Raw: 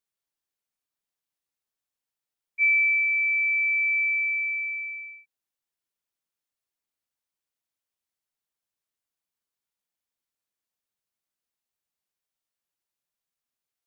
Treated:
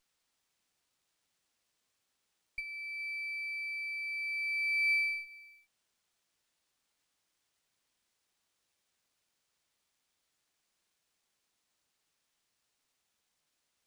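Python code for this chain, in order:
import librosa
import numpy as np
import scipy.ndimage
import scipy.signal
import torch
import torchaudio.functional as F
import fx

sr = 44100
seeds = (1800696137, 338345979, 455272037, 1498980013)

y = fx.high_shelf(x, sr, hz=2100.0, db=9.0)
y = fx.over_compress(y, sr, threshold_db=-30.0, ratio=-1.0)
y = y + 10.0 ** (-23.0 / 20.0) * np.pad(y, (int(416 * sr / 1000.0), 0))[:len(y)]
y = fx.running_max(y, sr, window=3)
y = y * 10.0 ** (-6.5 / 20.0)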